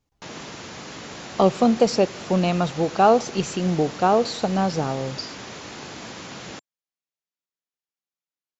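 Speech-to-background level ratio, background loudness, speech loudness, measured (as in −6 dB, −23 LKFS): 15.0 dB, −36.5 LKFS, −21.5 LKFS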